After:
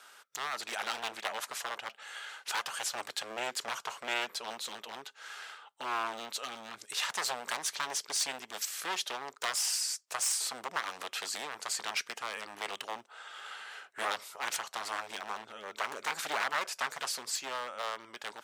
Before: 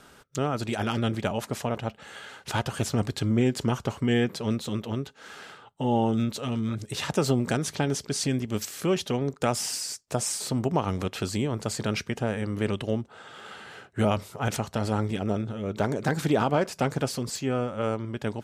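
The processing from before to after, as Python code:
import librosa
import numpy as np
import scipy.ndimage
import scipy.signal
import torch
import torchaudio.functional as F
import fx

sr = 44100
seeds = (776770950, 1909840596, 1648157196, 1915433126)

y = np.minimum(x, 2.0 * 10.0 ** (-24.5 / 20.0) - x)
y = scipy.signal.sosfilt(scipy.signal.butter(2, 950.0, 'highpass', fs=sr, output='sos'), y)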